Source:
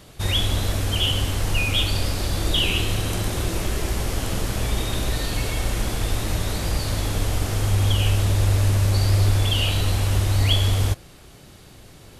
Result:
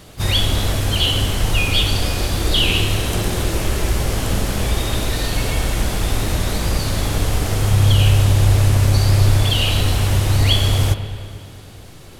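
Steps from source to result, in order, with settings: spring tank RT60 2.2 s, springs 40/44/55 ms, chirp 70 ms, DRR 8 dB; harmony voices +5 st -12 dB; trim +4 dB

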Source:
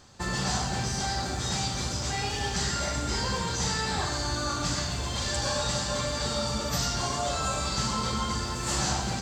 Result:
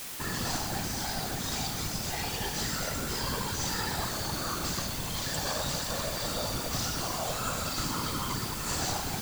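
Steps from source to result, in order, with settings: whisper effect; word length cut 6-bit, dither triangular; trim -4 dB

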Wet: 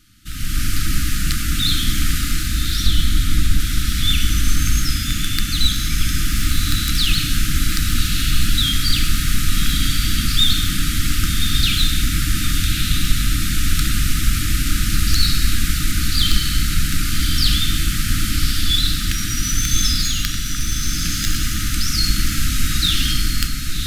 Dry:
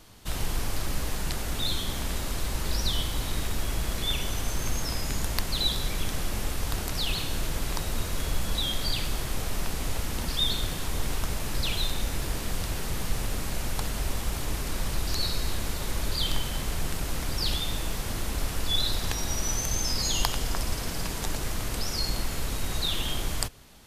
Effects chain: tracing distortion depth 0.06 ms; FFT band-reject 330–1200 Hz; 2.86–3.60 s: tilt EQ -1.5 dB/octave; level rider gain up to 13 dB; echo that smears into a reverb 1164 ms, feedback 45%, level -4.5 dB; trim -1 dB

